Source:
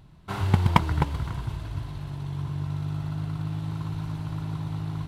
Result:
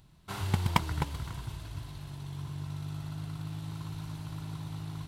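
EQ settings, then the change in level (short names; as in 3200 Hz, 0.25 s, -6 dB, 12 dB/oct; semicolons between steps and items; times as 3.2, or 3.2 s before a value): high shelf 3300 Hz +12 dB; -8.0 dB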